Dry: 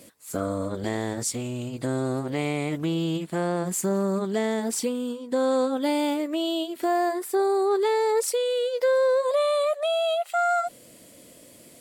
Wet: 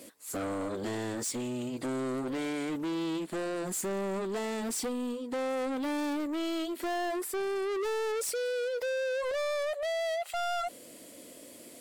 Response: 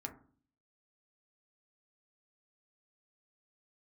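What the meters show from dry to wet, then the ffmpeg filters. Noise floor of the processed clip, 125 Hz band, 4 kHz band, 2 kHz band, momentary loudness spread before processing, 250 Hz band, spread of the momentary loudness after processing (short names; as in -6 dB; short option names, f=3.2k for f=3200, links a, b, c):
-50 dBFS, -12.5 dB, -7.0 dB, -3.5 dB, 7 LU, -6.0 dB, 4 LU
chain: -af "lowshelf=f=200:t=q:w=1.5:g=-7,asoftclip=type=tanh:threshold=-30.5dB"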